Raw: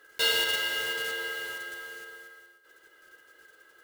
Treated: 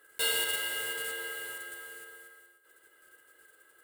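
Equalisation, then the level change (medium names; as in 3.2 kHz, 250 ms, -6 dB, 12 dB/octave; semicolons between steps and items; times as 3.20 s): resonant high shelf 7.2 kHz +6 dB, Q 3; -4.5 dB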